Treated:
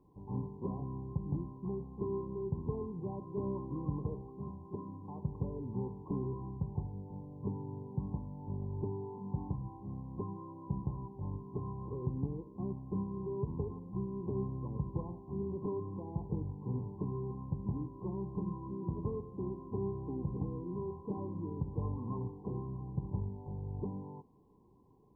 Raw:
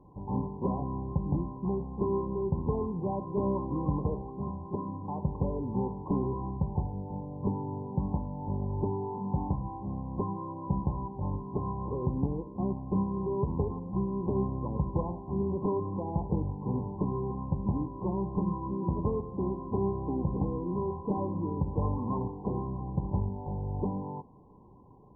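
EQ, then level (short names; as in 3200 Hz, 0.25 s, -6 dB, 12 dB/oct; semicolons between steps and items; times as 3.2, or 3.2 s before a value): low shelf 460 Hz -10 dB; band shelf 740 Hz -9.5 dB 1.2 oct; dynamic EQ 120 Hz, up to +8 dB, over -55 dBFS, Q 2.1; -1.0 dB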